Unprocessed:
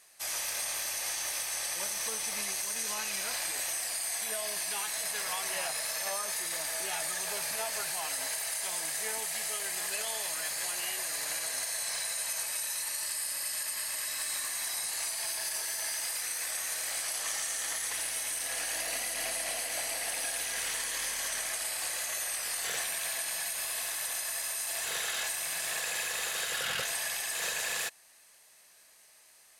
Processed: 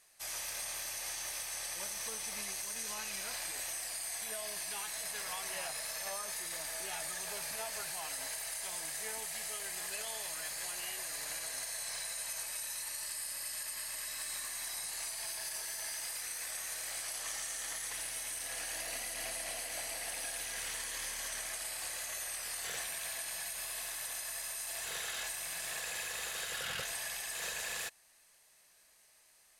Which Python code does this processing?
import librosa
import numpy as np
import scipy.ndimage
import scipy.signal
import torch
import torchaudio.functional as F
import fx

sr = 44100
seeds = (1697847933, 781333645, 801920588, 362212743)

y = fx.low_shelf(x, sr, hz=100.0, db=10.5)
y = y * librosa.db_to_amplitude(-6.0)